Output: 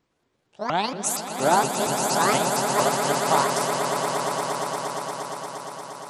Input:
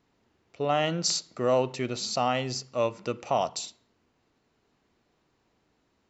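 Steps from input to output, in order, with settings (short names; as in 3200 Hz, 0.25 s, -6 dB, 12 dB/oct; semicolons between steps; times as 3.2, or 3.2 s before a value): repeated pitch sweeps +10 st, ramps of 0.233 s; swelling echo 0.117 s, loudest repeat 8, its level -8 dB; upward expander 1.5:1, over -34 dBFS; gain +5 dB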